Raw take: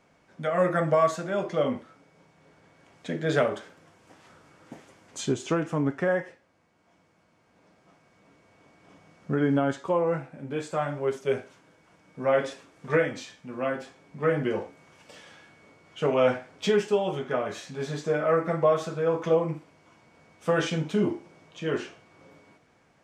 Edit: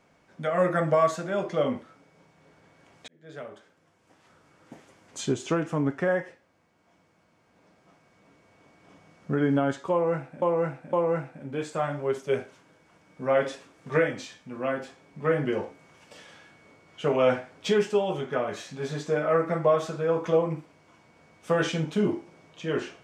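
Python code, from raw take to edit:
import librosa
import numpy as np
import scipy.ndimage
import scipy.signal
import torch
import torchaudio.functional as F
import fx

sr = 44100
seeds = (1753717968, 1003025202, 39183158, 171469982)

y = fx.edit(x, sr, fx.fade_in_span(start_s=3.08, length_s=2.22),
    fx.repeat(start_s=9.91, length_s=0.51, count=3), tone=tone)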